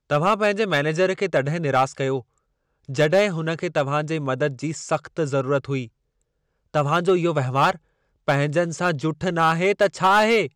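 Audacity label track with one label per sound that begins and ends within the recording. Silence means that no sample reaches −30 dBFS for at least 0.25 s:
2.890000	5.850000	sound
6.740000	7.750000	sound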